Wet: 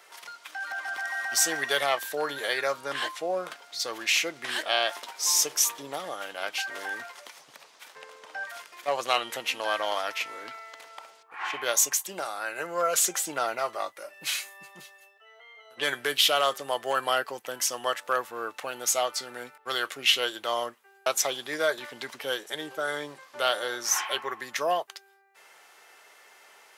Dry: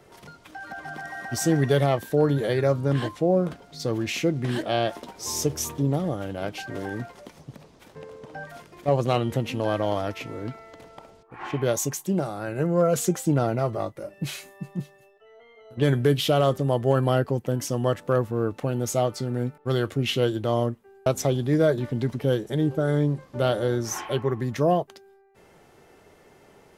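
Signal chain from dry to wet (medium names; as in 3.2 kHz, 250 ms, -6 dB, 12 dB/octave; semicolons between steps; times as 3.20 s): high-pass 1.2 kHz 12 dB/octave; trim +7 dB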